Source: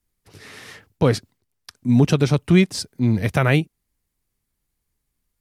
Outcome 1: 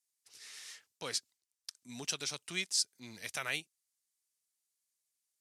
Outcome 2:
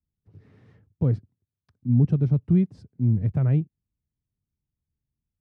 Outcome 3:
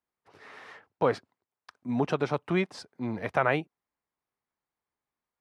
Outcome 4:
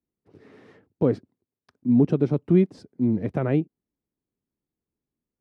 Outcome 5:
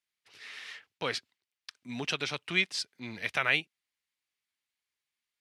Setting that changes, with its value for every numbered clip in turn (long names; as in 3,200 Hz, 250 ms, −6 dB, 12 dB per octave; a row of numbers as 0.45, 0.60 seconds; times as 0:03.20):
resonant band-pass, frequency: 7,100, 110, 920, 310, 2,800 Hertz